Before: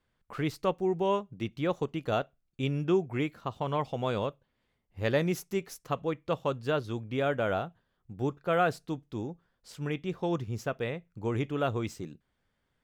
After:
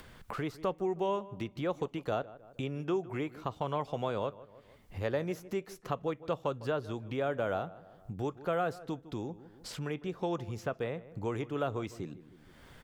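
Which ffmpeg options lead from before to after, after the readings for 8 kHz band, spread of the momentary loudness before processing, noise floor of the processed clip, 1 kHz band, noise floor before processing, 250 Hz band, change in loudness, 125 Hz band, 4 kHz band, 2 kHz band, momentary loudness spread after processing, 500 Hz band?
-5.0 dB, 11 LU, -59 dBFS, -3.5 dB, -78 dBFS, -4.5 dB, -4.0 dB, -5.0 dB, -5.0 dB, -5.5 dB, 10 LU, -3.5 dB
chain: -filter_complex "[0:a]acrossover=split=400|1600|3500[a][b][c][d];[a]acompressor=threshold=-38dB:ratio=4[e];[b]acompressor=threshold=-30dB:ratio=4[f];[c]acompressor=threshold=-53dB:ratio=4[g];[d]acompressor=threshold=-56dB:ratio=4[h];[e][f][g][h]amix=inputs=4:normalize=0,asplit=2[i][j];[j]adelay=155,lowpass=f=1.9k:p=1,volume=-18dB,asplit=2[k][l];[l]adelay=155,lowpass=f=1.9k:p=1,volume=0.3,asplit=2[m][n];[n]adelay=155,lowpass=f=1.9k:p=1,volume=0.3[o];[i][k][m][o]amix=inputs=4:normalize=0,acompressor=mode=upward:threshold=-34dB:ratio=2.5"

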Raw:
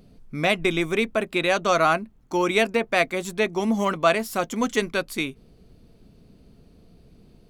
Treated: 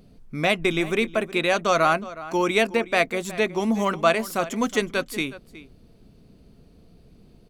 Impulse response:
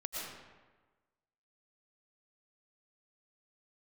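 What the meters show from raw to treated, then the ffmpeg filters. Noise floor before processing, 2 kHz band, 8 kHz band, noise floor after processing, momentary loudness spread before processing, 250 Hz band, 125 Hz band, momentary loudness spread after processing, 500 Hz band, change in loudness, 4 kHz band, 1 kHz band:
-55 dBFS, 0.0 dB, 0.0 dB, -54 dBFS, 7 LU, 0.0 dB, 0.0 dB, 7 LU, 0.0 dB, 0.0 dB, 0.0 dB, 0.0 dB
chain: -filter_complex "[0:a]asplit=2[a][b];[b]adelay=367.3,volume=-16dB,highshelf=f=4k:g=-8.27[c];[a][c]amix=inputs=2:normalize=0"

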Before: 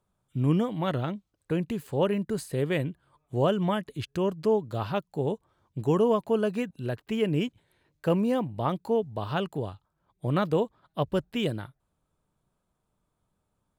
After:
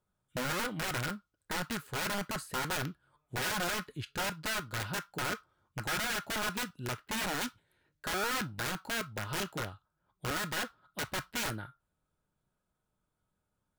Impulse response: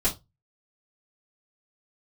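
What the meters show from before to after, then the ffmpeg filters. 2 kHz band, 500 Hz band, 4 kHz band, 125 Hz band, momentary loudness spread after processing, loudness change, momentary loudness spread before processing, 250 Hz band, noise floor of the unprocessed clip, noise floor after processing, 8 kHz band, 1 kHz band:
+6.0 dB, -14.5 dB, +3.5 dB, -11.5 dB, 8 LU, -6.5 dB, 10 LU, -13.0 dB, -79 dBFS, -84 dBFS, n/a, -3.5 dB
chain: -filter_complex "[0:a]aeval=exprs='(mod(15.8*val(0)+1,2)-1)/15.8':c=same,asplit=2[a][b];[b]highpass=f=1.4k:t=q:w=8.6[c];[1:a]atrim=start_sample=2205[d];[c][d]afir=irnorm=-1:irlink=0,volume=-20dB[e];[a][e]amix=inputs=2:normalize=0,volume=-6dB"

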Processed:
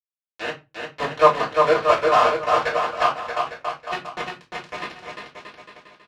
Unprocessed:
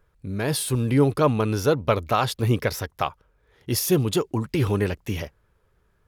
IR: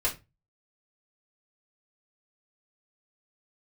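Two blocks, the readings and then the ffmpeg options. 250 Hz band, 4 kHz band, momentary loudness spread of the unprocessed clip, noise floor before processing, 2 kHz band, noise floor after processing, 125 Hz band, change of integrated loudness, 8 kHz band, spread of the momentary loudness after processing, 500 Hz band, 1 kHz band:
-12.5 dB, +0.5 dB, 10 LU, -65 dBFS, +6.5 dB, under -85 dBFS, -18.5 dB, +2.5 dB, -12.5 dB, 18 LU, +3.0 dB, +9.0 dB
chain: -filter_complex "[0:a]acrossover=split=540 2200:gain=0.0794 1 0.0794[a][b][c];[a][b][c]amix=inputs=3:normalize=0,bandreject=f=530:w=12,asplit=2[d][e];[e]acompressor=mode=upward:threshold=-29dB:ratio=2.5,volume=1dB[f];[d][f]amix=inputs=2:normalize=0,aeval=exprs='val(0)+0.0112*(sin(2*PI*50*n/s)+sin(2*PI*2*50*n/s)/2+sin(2*PI*3*50*n/s)/3+sin(2*PI*4*50*n/s)/4+sin(2*PI*5*50*n/s)/5)':c=same,aeval=exprs='val(0)*gte(abs(val(0)),0.133)':c=same,highpass=130,lowpass=4.4k,aecho=1:1:350|630|854|1033|1177:0.631|0.398|0.251|0.158|0.1[g];[1:a]atrim=start_sample=2205[h];[g][h]afir=irnorm=-1:irlink=0,volume=-5.5dB"

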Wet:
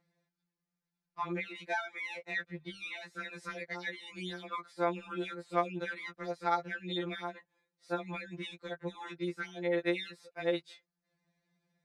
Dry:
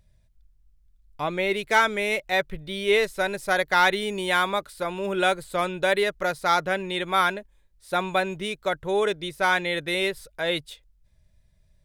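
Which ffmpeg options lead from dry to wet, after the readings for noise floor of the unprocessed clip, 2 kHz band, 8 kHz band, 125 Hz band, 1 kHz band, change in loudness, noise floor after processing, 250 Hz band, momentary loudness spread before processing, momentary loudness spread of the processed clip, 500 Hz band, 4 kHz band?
-62 dBFS, -14.5 dB, -20.0 dB, -8.0 dB, -13.5 dB, -13.0 dB, under -85 dBFS, -7.5 dB, 8 LU, 9 LU, -12.5 dB, -15.0 dB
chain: -af "highpass=230,lowpass=4.2k,acompressor=threshold=-29dB:ratio=6,equalizer=f=3.1k:w=3.4:g=-9.5,afftfilt=real='re*2.83*eq(mod(b,8),0)':imag='im*2.83*eq(mod(b,8),0)':win_size=2048:overlap=0.75"

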